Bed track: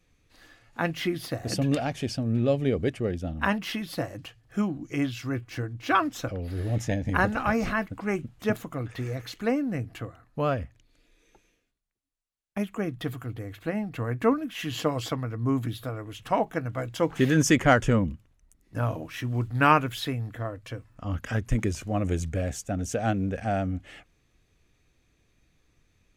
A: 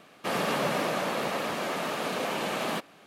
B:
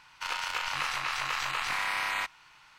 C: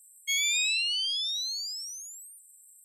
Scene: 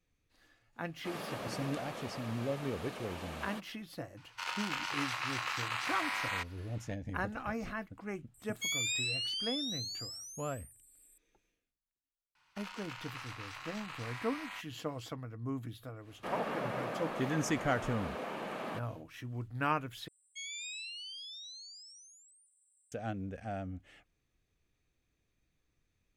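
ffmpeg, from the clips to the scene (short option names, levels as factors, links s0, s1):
-filter_complex "[1:a]asplit=2[s0][s1];[2:a]asplit=2[s2][s3];[3:a]asplit=2[s4][s5];[0:a]volume=0.237[s6];[s2]highpass=150[s7];[s1]acrossover=split=2500[s8][s9];[s9]acompressor=threshold=0.00355:ratio=4:attack=1:release=60[s10];[s8][s10]amix=inputs=2:normalize=0[s11];[s5]aresample=22050,aresample=44100[s12];[s6]asplit=2[s13][s14];[s13]atrim=end=20.084[s15];[s12]atrim=end=2.84,asetpts=PTS-STARTPTS,volume=0.158[s16];[s14]atrim=start=22.916[s17];[s0]atrim=end=3.06,asetpts=PTS-STARTPTS,volume=0.2,afade=t=in:d=0.004:c=hsin,afade=t=out:st=3.056:d=0.004:c=hsin,adelay=800[s18];[s7]atrim=end=2.78,asetpts=PTS-STARTPTS,volume=0.562,afade=t=in:d=0.004:c=hsin,afade=t=out:st=2.776:d=0.004:c=hsin,adelay=183897S[s19];[s4]atrim=end=2.84,asetpts=PTS-STARTPTS,volume=0.422,afade=t=in:d=0.004:c=hsin,afade=t=out:st=2.836:d=0.004:c=hsin,adelay=367794S[s20];[s3]atrim=end=2.78,asetpts=PTS-STARTPTS,volume=0.188,afade=t=in:d=0.004:c=hsin,afade=t=out:st=2.776:d=0.004:c=hsin,adelay=12350[s21];[s11]atrim=end=3.06,asetpts=PTS-STARTPTS,volume=0.355,afade=t=in:d=0.1,afade=t=out:st=2.96:d=0.1,adelay=15990[s22];[s15][s16]acrossfade=d=0.004:c1=hsin:c2=hsin[s23];[s23][s17]acrossfade=d=0.004:c1=hsin:c2=hsin[s24];[s24][s18][s19][s20][s21][s22]amix=inputs=6:normalize=0"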